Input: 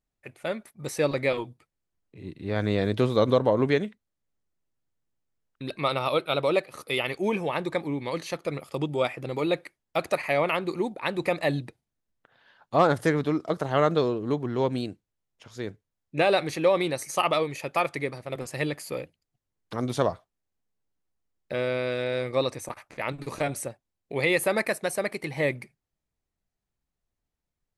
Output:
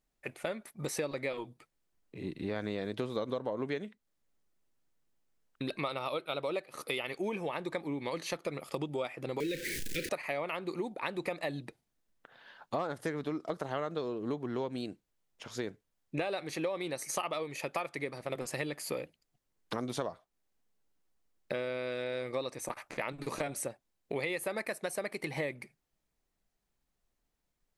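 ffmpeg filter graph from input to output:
ffmpeg -i in.wav -filter_complex "[0:a]asettb=1/sr,asplit=3[link_01][link_02][link_03];[link_01]atrim=end=9.404[link_04];[link_02]atrim=start=9.4:end=10.09,asetpts=PTS-STARTPTS,afade=type=in:duration=0.004:curve=qsin,afade=type=out:start_time=0.686:duration=0.004:curve=qsin,aeval=exprs='val(0)+0.5*0.0422*sgn(val(0))':channel_layout=same,asuperstop=centerf=890:order=12:qfactor=0.82,asplit=2[link_05][link_06];[link_06]adelay=32,volume=-12.5dB[link_07];[link_05][link_07]amix=inputs=2:normalize=0,atrim=end_sample=30429[link_08];[link_03]atrim=start=10.086[link_09];[link_04][link_08]acrossfade=duration=0.004:curve1=hsin:curve2=qsin[link_10];[link_10][link_09]acrossfade=duration=0.004:curve1=qsin:curve2=hsin,equalizer=frequency=91:width=1.3:gain=-9.5,acompressor=threshold=-37dB:ratio=6,volume=4dB" out.wav

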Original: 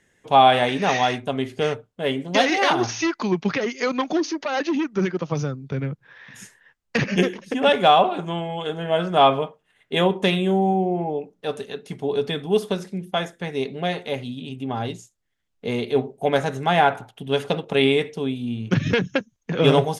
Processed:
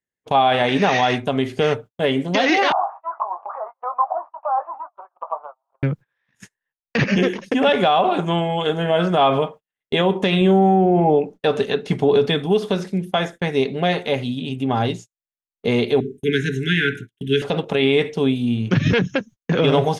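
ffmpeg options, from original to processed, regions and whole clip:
ffmpeg -i in.wav -filter_complex "[0:a]asettb=1/sr,asplit=3[link_01][link_02][link_03];[link_01]atrim=end=2.724[link_04];[link_02]atrim=start=2.72:end=5.83,asetpts=PTS-STARTPTS,afade=type=in:duration=0.004:curve=qsin,afade=type=out:start_time=3.106:duration=0.004:curve=qsin,aeval=exprs='val(0)+0.5*0.0251*sgn(val(0))':channel_layout=same,asuperpass=centerf=870:order=8:qfactor=1.6,asplit=2[link_05][link_06];[link_06]adelay=20,volume=-8dB[link_07];[link_05][link_07]amix=inputs=2:normalize=0,atrim=end_sample=137151[link_08];[link_03]atrim=start=5.826[link_09];[link_04][link_08]acrossfade=duration=0.004:curve1=hsin:curve2=qsin[link_10];[link_10][link_09]acrossfade=duration=0.004:curve1=qsin:curve2=hsin,asettb=1/sr,asplit=3[link_11][link_12][link_13];[link_11]atrim=end=10.414[link_14];[link_12]atrim=start=10.41:end=12.26,asetpts=PTS-STARTPTS,afade=type=in:duration=0.004:curve=qsin,afade=type=out:start_time=1.846:duration=0.004:curve=qsin,acontrast=39,highshelf=frequency=7500:gain=-8.5[link_15];[link_13]atrim=start=12.256[link_16];[link_14][link_15]acrossfade=duration=0.004:curve1=hsin:curve2=qsin[link_17];[link_17][link_16]acrossfade=duration=0.004:curve1=qsin:curve2=hsin,asettb=1/sr,asplit=3[link_18][link_19][link_20];[link_18]atrim=end=16.004[link_21];[link_19]atrim=start=16:end=17.42,asetpts=PTS-STARTPTS,afade=type=in:duration=0.004:curve=qsin,afade=type=out:start_time=1.416:duration=0.004:curve=qsin,asuperstop=centerf=800:order=20:qfactor=0.76,equalizer=frequency=4600:width=5.7:gain=-10.5,bandreject=frequency=50:width_type=h:width=6,bandreject=frequency=100:width_type=h:width=6,bandreject=frequency=150:width_type=h:width=6,bandreject=frequency=200:width_type=h:width=6,bandreject=frequency=250:width_type=h:width=6,bandreject=frequency=300:width_type=h:width=6,bandreject=frequency=350:width_type=h:width=6[link_22];[link_20]atrim=start=17.416[link_23];[link_21][link_22]acrossfade=duration=0.004:curve1=hsin:curve2=qsin[link_24];[link_24][link_23]acrossfade=duration=0.004:curve1=qsin:curve2=hsin,agate=range=-36dB:threshold=-39dB:ratio=16:detection=peak,acrossover=split=5800[link_25][link_26];[link_26]acompressor=threshold=-57dB:ratio=4:attack=1:release=60[link_27];[link_25][link_27]amix=inputs=2:normalize=0,alimiter=limit=-14.5dB:level=0:latency=1:release=76,volume=7dB" out.wav

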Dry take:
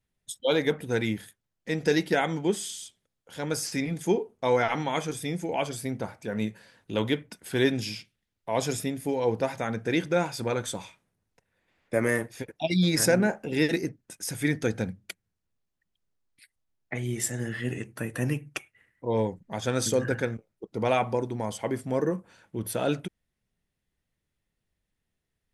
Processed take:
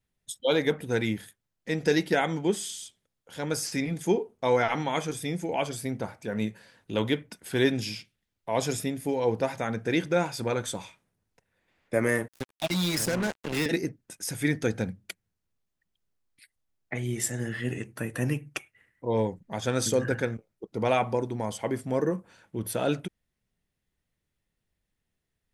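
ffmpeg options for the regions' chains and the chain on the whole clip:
ffmpeg -i in.wav -filter_complex "[0:a]asettb=1/sr,asplit=3[link_01][link_02][link_03];[link_01]atrim=end=12.284[link_04];[link_02]atrim=start=12.28:end=13.66,asetpts=PTS-STARTPTS,afade=type=in:duration=0.004:curve=qsin,afade=type=out:start_time=1.376:duration=0.004:curve=qsin,highshelf=frequency=2700:gain=6,acrossover=split=220|620[link_05][link_06][link_07];[link_05]acompressor=threshold=-32dB:ratio=4[link_08];[link_06]acompressor=threshold=-33dB:ratio=4[link_09];[link_07]acompressor=threshold=-30dB:ratio=4[link_10];[link_08][link_09][link_10]amix=inputs=3:normalize=0,acrusher=bits=4:mix=0:aa=0.5[link_11];[link_03]atrim=start=13.656[link_12];[link_04][link_11]acrossfade=duration=0.004:curve1=hsin:curve2=qsin[link_13];[link_13][link_12]acrossfade=duration=0.004:curve1=qsin:curve2=hsin" out.wav

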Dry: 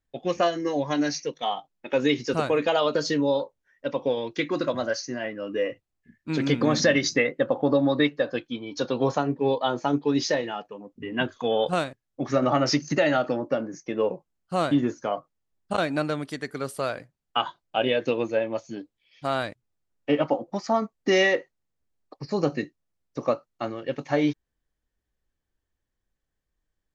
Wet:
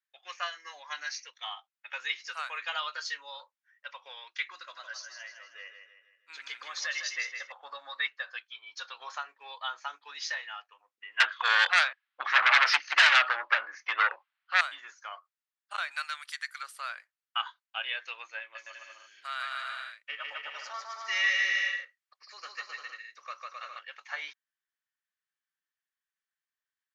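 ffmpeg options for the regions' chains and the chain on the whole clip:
ffmpeg -i in.wav -filter_complex "[0:a]asettb=1/sr,asplit=3[link_01][link_02][link_03];[link_01]atrim=end=4.524[link_04];[link_02]atrim=start=4.52:end=7.52,asetpts=PTS-STARTPTS,afade=type=in:duration=0.004:curve=qsin,afade=type=out:start_time=2.996:duration=0.004:curve=qsin,equalizer=frequency=1500:width=0.43:gain=-6.5,aecho=1:1:158|316|474|632|790:0.447|0.197|0.0865|0.0381|0.0167,atrim=end_sample=132300[link_05];[link_03]atrim=start=7.516[link_06];[link_04][link_05]acrossfade=duration=0.004:curve1=hsin:curve2=qsin[link_07];[link_07][link_06]acrossfade=duration=0.004:curve1=qsin:curve2=hsin,asettb=1/sr,asplit=3[link_08][link_09][link_10];[link_08]atrim=end=11.204[link_11];[link_09]atrim=start=11.2:end=14.61,asetpts=PTS-STARTPTS,afade=type=in:duration=0.004:curve=qsin,afade=type=out:start_time=3.406:duration=0.004:curve=qsin,lowpass=frequency=3700:width=0.5412,lowpass=frequency=3700:width=1.3066,aeval=exprs='0.335*sin(PI/2*3.98*val(0)/0.335)':channel_layout=same[link_12];[link_10]atrim=start=14.606[link_13];[link_11][link_12]acrossfade=duration=0.004:curve1=hsin:curve2=qsin[link_14];[link_14][link_13]acrossfade=duration=0.004:curve1=qsin:curve2=hsin,asettb=1/sr,asplit=3[link_15][link_16][link_17];[link_15]atrim=end=15.914[link_18];[link_16]atrim=start=15.91:end=16.63,asetpts=PTS-STARTPTS,afade=type=in:duration=0.004:curve=qsin,afade=type=out:start_time=0.716:duration=0.004:curve=qsin,highpass=860,highshelf=frequency=2800:gain=9[link_19];[link_17]atrim=start=16.626[link_20];[link_18][link_19]acrossfade=duration=0.004:curve1=hsin:curve2=qsin[link_21];[link_21][link_20]acrossfade=duration=0.004:curve1=qsin:curve2=hsin,asettb=1/sr,asplit=3[link_22][link_23][link_24];[link_22]atrim=end=18.404[link_25];[link_23]atrim=start=18.4:end=23.79,asetpts=PTS-STARTPTS,afade=type=in:duration=0.004:curve=qsin,afade=type=out:start_time=5.386:duration=0.004:curve=qsin,equalizer=frequency=830:width_type=o:width=0.66:gain=-9.5,aecho=1:1:150|262.5|346.9|410.2|457.6|493.2:0.794|0.631|0.501|0.398|0.316|0.251,atrim=end_sample=237699[link_26];[link_24]atrim=start=23.786[link_27];[link_25][link_26]acrossfade=duration=0.004:curve1=hsin:curve2=qsin[link_28];[link_28][link_27]acrossfade=duration=0.004:curve1=qsin:curve2=hsin,highpass=frequency=1300:width=0.5412,highpass=frequency=1300:width=1.3066,highshelf=frequency=3300:gain=-10.5,volume=1dB" out.wav

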